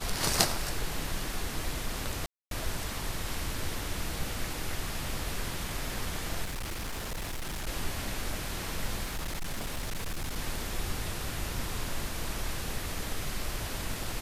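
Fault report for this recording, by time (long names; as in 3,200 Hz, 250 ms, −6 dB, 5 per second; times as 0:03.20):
0:02.26–0:02.51: drop-out 252 ms
0:06.44–0:07.68: clipping −32 dBFS
0:09.03–0:10.37: clipping −30 dBFS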